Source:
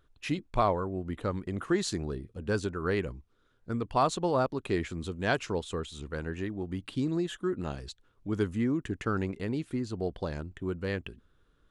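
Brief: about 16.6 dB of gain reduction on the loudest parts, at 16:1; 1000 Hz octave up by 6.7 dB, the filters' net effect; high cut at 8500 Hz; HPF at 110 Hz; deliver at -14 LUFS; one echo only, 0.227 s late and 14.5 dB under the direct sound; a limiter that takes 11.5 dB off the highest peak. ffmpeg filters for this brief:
-af "highpass=110,lowpass=8.5k,equalizer=f=1k:t=o:g=8.5,acompressor=threshold=-31dB:ratio=16,alimiter=level_in=5dB:limit=-24dB:level=0:latency=1,volume=-5dB,aecho=1:1:227:0.188,volume=26.5dB"

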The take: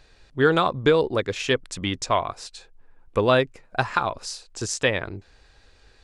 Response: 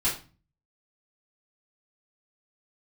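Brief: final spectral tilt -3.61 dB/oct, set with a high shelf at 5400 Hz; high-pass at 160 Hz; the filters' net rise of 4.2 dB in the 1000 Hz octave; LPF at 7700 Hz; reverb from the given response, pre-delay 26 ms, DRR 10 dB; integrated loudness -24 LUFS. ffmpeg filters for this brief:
-filter_complex "[0:a]highpass=160,lowpass=7.7k,equalizer=f=1k:t=o:g=5,highshelf=f=5.4k:g=4,asplit=2[a][b];[1:a]atrim=start_sample=2205,adelay=26[c];[b][c]afir=irnorm=-1:irlink=0,volume=-19.5dB[d];[a][d]amix=inputs=2:normalize=0,volume=-2.5dB"

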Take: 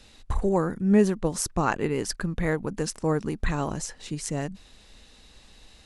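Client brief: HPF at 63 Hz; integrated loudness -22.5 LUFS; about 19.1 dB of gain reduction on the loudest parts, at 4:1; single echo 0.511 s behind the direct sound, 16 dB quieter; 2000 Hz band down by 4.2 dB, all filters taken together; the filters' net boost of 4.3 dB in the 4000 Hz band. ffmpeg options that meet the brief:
-af "highpass=63,equalizer=f=2k:t=o:g=-7,equalizer=f=4k:t=o:g=7.5,acompressor=threshold=-38dB:ratio=4,aecho=1:1:511:0.158,volume=18.5dB"

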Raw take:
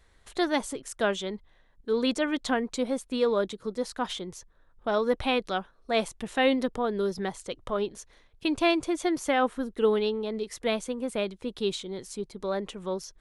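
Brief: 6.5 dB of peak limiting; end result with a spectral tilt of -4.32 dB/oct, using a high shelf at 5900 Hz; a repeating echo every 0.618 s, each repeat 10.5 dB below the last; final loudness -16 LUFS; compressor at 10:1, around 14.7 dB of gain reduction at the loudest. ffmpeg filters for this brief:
-af "highshelf=f=5.9k:g=-7.5,acompressor=threshold=-34dB:ratio=10,alimiter=level_in=5.5dB:limit=-24dB:level=0:latency=1,volume=-5.5dB,aecho=1:1:618|1236|1854:0.299|0.0896|0.0269,volume=24.5dB"

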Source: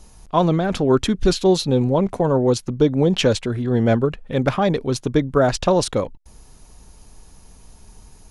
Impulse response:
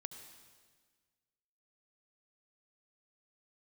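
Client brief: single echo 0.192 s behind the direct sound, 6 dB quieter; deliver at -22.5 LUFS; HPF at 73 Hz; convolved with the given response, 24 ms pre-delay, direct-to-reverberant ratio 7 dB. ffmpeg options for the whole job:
-filter_complex "[0:a]highpass=73,aecho=1:1:192:0.501,asplit=2[a][b];[1:a]atrim=start_sample=2205,adelay=24[c];[b][c]afir=irnorm=-1:irlink=0,volume=-3.5dB[d];[a][d]amix=inputs=2:normalize=0,volume=-5dB"

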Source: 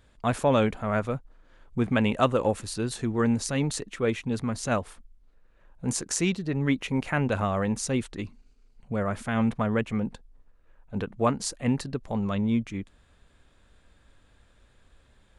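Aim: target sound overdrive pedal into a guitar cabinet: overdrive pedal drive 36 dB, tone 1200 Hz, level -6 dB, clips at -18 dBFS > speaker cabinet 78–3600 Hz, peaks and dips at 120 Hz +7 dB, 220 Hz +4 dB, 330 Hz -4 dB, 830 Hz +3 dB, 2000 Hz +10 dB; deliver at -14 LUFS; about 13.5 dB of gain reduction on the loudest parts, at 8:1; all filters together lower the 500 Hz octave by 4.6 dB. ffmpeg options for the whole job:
-filter_complex "[0:a]equalizer=f=500:t=o:g=-5.5,acompressor=threshold=-34dB:ratio=8,asplit=2[a][b];[b]highpass=f=720:p=1,volume=36dB,asoftclip=type=tanh:threshold=-18dB[c];[a][c]amix=inputs=2:normalize=0,lowpass=f=1.2k:p=1,volume=-6dB,highpass=78,equalizer=f=120:t=q:w=4:g=7,equalizer=f=220:t=q:w=4:g=4,equalizer=f=330:t=q:w=4:g=-4,equalizer=f=830:t=q:w=4:g=3,equalizer=f=2k:t=q:w=4:g=10,lowpass=f=3.6k:w=0.5412,lowpass=f=3.6k:w=1.3066,volume=12.5dB"

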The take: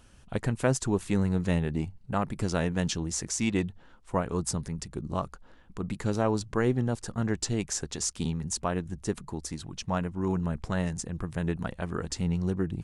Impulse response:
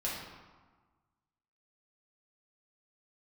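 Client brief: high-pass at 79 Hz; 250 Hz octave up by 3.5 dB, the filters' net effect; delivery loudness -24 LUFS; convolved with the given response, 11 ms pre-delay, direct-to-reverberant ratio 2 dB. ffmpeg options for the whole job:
-filter_complex "[0:a]highpass=79,equalizer=f=250:t=o:g=5,asplit=2[a][b];[1:a]atrim=start_sample=2205,adelay=11[c];[b][c]afir=irnorm=-1:irlink=0,volume=-6.5dB[d];[a][d]amix=inputs=2:normalize=0,volume=1.5dB"

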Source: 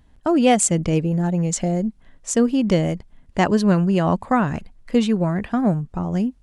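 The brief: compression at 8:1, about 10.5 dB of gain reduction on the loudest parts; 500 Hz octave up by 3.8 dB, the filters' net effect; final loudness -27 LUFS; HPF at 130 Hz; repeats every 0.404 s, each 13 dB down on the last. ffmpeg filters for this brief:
-af "highpass=130,equalizer=f=500:t=o:g=4.5,acompressor=threshold=-19dB:ratio=8,aecho=1:1:404|808|1212:0.224|0.0493|0.0108,volume=-2.5dB"

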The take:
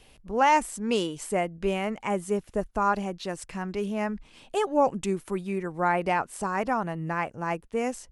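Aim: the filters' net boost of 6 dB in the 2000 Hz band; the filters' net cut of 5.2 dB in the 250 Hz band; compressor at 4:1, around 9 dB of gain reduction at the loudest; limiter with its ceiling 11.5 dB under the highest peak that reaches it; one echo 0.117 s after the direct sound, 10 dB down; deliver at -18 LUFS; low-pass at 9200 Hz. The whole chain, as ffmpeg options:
-af "lowpass=9.2k,equalizer=f=250:t=o:g=-7.5,equalizer=f=2k:t=o:g=7.5,acompressor=threshold=-25dB:ratio=4,alimiter=level_in=2dB:limit=-24dB:level=0:latency=1,volume=-2dB,aecho=1:1:117:0.316,volume=18.5dB"

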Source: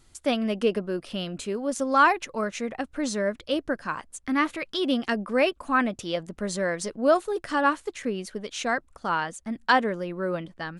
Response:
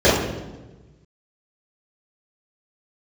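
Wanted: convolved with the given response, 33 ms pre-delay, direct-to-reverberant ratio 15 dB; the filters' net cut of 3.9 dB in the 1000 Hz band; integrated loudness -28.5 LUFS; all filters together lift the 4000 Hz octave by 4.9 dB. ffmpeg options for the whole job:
-filter_complex "[0:a]equalizer=f=1k:t=o:g=-5.5,equalizer=f=4k:t=o:g=7,asplit=2[a][b];[1:a]atrim=start_sample=2205,adelay=33[c];[b][c]afir=irnorm=-1:irlink=0,volume=-41.5dB[d];[a][d]amix=inputs=2:normalize=0,volume=-1dB"

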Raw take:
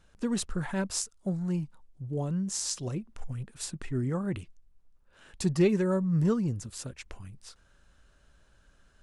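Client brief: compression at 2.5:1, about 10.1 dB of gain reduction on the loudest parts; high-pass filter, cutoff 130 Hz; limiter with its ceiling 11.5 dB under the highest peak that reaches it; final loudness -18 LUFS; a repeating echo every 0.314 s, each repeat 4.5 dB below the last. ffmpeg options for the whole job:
-af "highpass=130,acompressor=threshold=-34dB:ratio=2.5,alimiter=level_in=4.5dB:limit=-24dB:level=0:latency=1,volume=-4.5dB,aecho=1:1:314|628|942|1256|1570|1884|2198|2512|2826:0.596|0.357|0.214|0.129|0.0772|0.0463|0.0278|0.0167|0.01,volume=19.5dB"

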